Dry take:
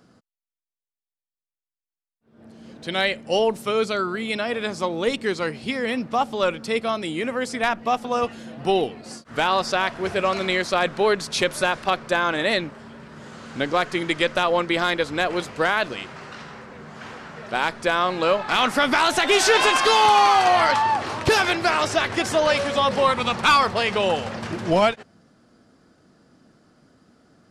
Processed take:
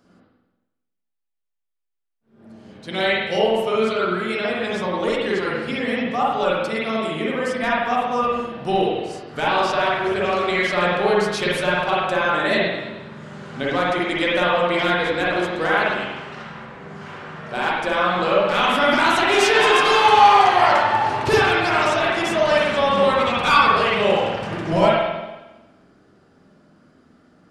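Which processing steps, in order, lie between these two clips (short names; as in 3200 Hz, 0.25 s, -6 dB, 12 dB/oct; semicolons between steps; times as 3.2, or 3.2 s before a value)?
flange 0.13 Hz, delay 3.2 ms, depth 9.2 ms, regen -61%; spring tank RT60 1.1 s, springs 45/50 ms, chirp 60 ms, DRR -6 dB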